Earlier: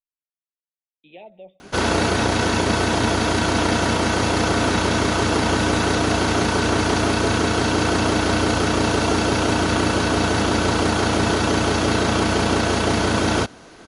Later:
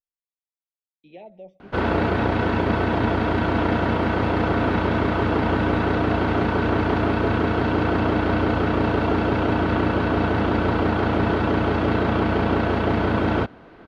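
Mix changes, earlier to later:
speech: remove rippled Chebyshev low-pass 3.7 kHz, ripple 3 dB; master: add distance through air 470 m

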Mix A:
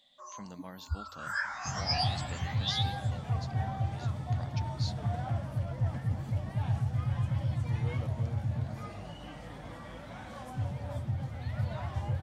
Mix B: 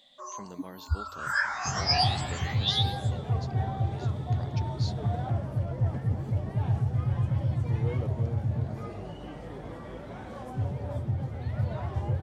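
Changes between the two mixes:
first sound +6.0 dB; second sound: add tilt shelf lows +3.5 dB, about 1.4 kHz; master: add peaking EQ 400 Hz +11.5 dB 0.45 oct

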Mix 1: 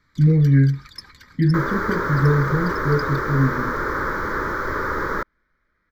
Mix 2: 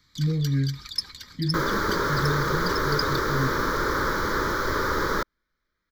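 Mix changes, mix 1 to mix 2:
speech -9.5 dB; master: add resonant high shelf 2.6 kHz +8.5 dB, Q 1.5

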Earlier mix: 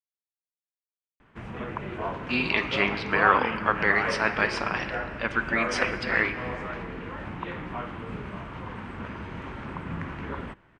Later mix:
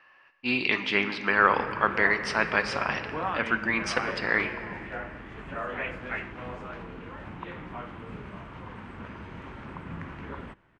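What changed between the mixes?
speech: entry -1.85 s; background -4.5 dB

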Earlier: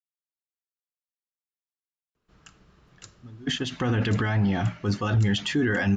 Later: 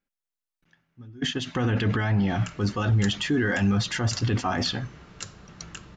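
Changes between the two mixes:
speech: entry -2.25 s; background +9.5 dB

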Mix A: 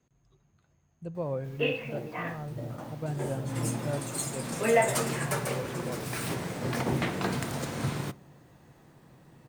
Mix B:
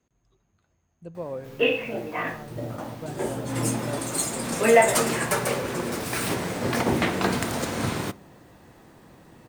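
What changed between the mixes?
background +7.0 dB; master: add peaking EQ 140 Hz -10 dB 0.37 oct

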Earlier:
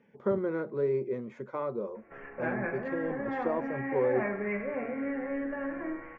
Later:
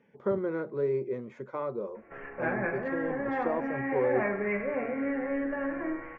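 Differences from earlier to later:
background +3.0 dB; master: add peaking EQ 220 Hz -3.5 dB 0.29 oct

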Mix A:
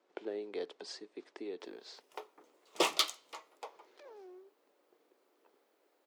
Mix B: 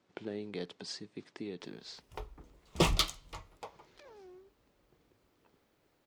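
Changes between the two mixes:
speech: add tilt shelf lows -4.5 dB, about 1.1 kHz; master: remove high-pass 360 Hz 24 dB/octave

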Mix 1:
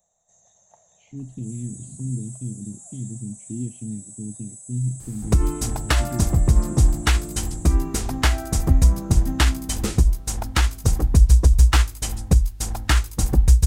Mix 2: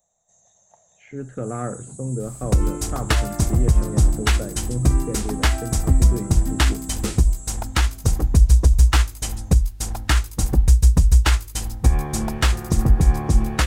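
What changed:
speech: remove inverse Chebyshev band-stop 620–1400 Hz, stop band 60 dB; second sound: entry -2.80 s

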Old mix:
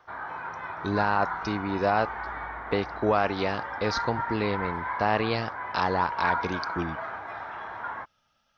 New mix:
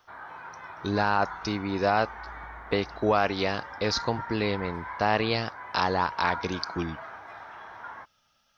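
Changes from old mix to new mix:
background -7.0 dB; master: add treble shelf 4.5 kHz +10 dB

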